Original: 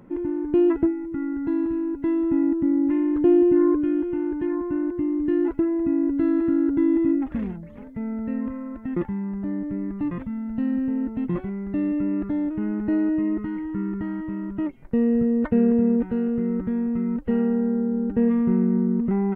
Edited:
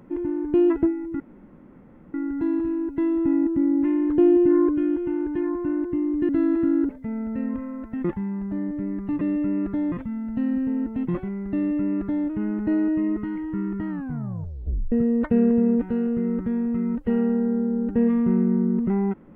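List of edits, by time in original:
0:01.20: splice in room tone 0.94 s
0:05.35–0:06.14: remove
0:06.74–0:07.81: remove
0:11.77–0:12.48: duplicate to 0:10.13
0:14.10: tape stop 1.03 s

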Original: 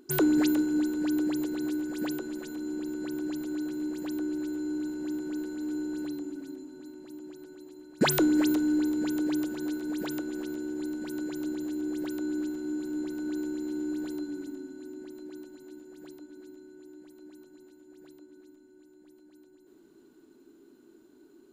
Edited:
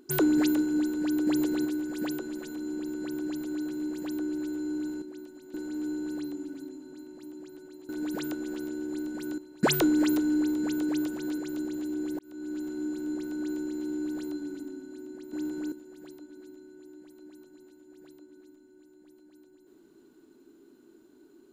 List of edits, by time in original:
0:01.27–0:01.65: clip gain +4 dB
0:05.02–0:05.41: swap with 0:15.20–0:15.72
0:09.76–0:11.25: move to 0:07.76
0:12.06–0:12.57: fade in

